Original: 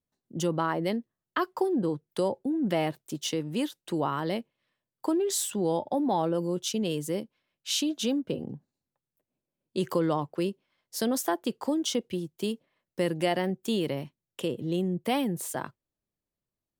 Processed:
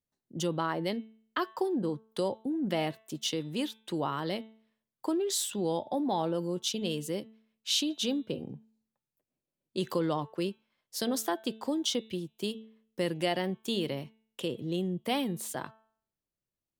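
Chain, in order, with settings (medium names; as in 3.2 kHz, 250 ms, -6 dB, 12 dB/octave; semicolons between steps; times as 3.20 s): de-hum 220.8 Hz, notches 18; dynamic bell 3.8 kHz, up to +6 dB, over -51 dBFS, Q 1.4; trim -3.5 dB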